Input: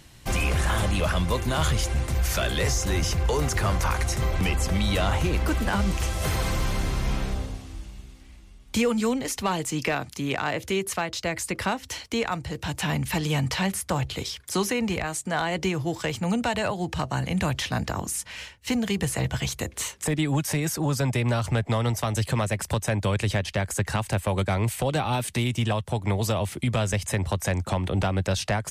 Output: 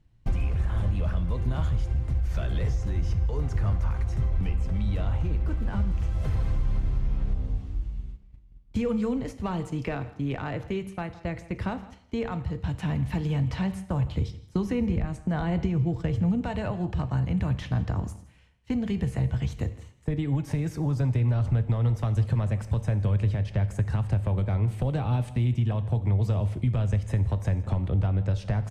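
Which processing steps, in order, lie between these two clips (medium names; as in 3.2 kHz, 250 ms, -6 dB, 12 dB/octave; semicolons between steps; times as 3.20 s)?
RIAA curve playback; gate -28 dBFS, range -15 dB; 14.16–16.41 s: bass shelf 250 Hz +9 dB; compression, threshold -14 dBFS, peak gain reduction 9.5 dB; echo from a far wall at 28 m, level -19 dB; two-slope reverb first 0.72 s, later 2.3 s, from -28 dB, DRR 11 dB; trim -8 dB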